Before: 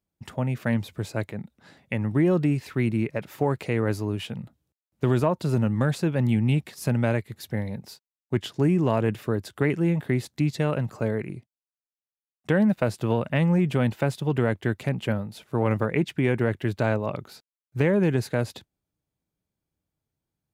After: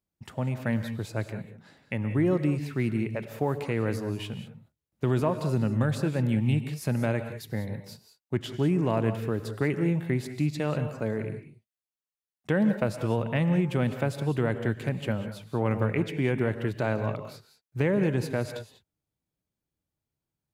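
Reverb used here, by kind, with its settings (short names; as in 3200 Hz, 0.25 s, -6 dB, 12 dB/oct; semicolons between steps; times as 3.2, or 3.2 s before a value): non-linear reverb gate 0.22 s rising, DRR 9 dB; gain -3.5 dB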